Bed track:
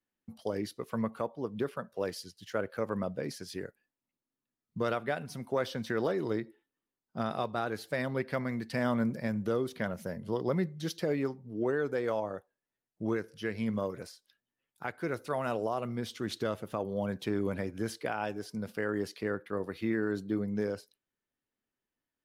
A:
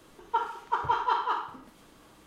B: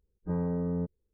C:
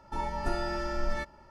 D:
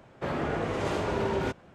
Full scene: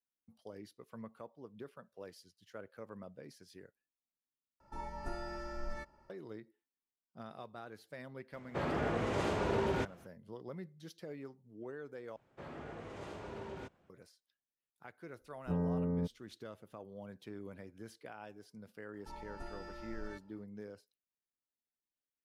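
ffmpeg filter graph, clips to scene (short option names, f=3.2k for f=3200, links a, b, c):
-filter_complex "[3:a]asplit=2[a][b];[4:a]asplit=2[c][d];[0:a]volume=-15.5dB[e];[a]equalizer=f=3.3k:t=o:w=0.63:g=-6[f];[e]asplit=3[g][h][i];[g]atrim=end=4.604[j];[f]atrim=end=1.5,asetpts=PTS-STARTPTS,volume=-10.5dB[k];[h]atrim=start=6.096:end=12.164[l];[d]atrim=end=1.74,asetpts=PTS-STARTPTS,volume=-17dB[m];[i]atrim=start=13.896[n];[c]atrim=end=1.74,asetpts=PTS-STARTPTS,volume=-4.5dB,afade=t=in:d=0.004:c=hsin,afade=t=out:st=1.736:d=0.004:c=hsin,adelay=8330[o];[2:a]atrim=end=1.13,asetpts=PTS-STARTPTS,volume=-3.5dB,afade=t=in:d=0.004:c=hsin,afade=t=out:st=1.126:d=0.004:c=hsin,adelay=15210[p];[b]atrim=end=1.5,asetpts=PTS-STARTPTS,volume=-16dB,afade=t=in:d=0.004:c=hsin,afade=t=out:st=1.496:d=0.004:c=hsin,adelay=18940[q];[j][k]acrossfade=d=0.004:c1=hsin:c2=hsin[r];[r][l]acrossfade=d=0.004:c1=hsin:c2=hsin[s];[s][m]acrossfade=d=0.004:c1=hsin:c2=hsin[t];[t][n]acrossfade=d=0.004:c1=hsin:c2=hsin[u];[u][o][p][q]amix=inputs=4:normalize=0"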